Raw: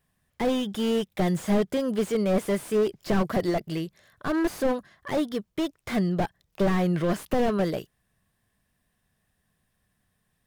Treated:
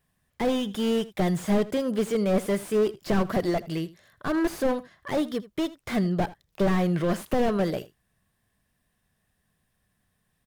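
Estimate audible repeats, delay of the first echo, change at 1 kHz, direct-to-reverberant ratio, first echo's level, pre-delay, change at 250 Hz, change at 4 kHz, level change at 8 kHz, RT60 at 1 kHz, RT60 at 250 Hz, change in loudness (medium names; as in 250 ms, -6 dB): 1, 80 ms, 0.0 dB, no reverb, -18.5 dB, no reverb, 0.0 dB, 0.0 dB, 0.0 dB, no reverb, no reverb, 0.0 dB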